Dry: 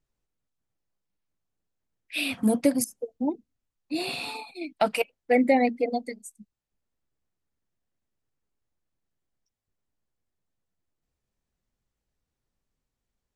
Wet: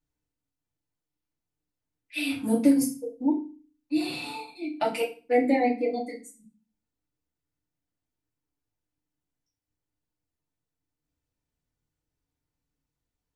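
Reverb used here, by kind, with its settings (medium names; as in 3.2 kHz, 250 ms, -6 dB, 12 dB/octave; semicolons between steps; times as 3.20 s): FDN reverb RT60 0.34 s, low-frequency decay 1.6×, high-frequency decay 0.95×, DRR -4.5 dB; trim -8.5 dB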